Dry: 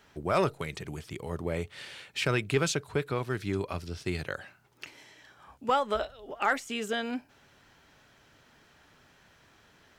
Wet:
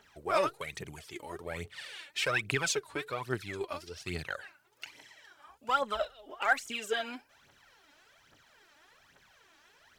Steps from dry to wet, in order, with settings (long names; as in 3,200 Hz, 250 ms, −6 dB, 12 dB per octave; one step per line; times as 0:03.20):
low-shelf EQ 330 Hz −11.5 dB
phase shifter 1.2 Hz, delay 3.6 ms, feedback 69%
0:02.23–0:03.97: one half of a high-frequency compander decoder only
level −3 dB